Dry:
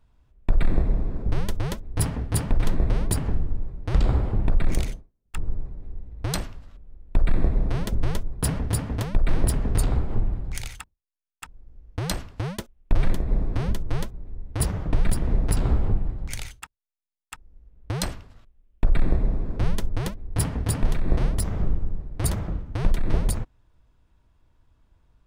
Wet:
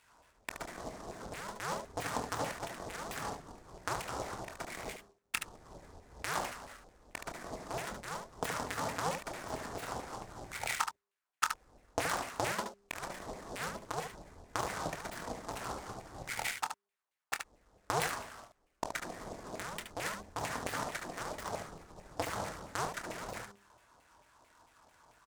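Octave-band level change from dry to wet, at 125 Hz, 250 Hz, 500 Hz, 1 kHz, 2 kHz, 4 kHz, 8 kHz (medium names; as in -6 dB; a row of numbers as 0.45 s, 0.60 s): -23.0 dB, -15.0 dB, -5.5 dB, +1.5 dB, +0.5 dB, -4.5 dB, -7.5 dB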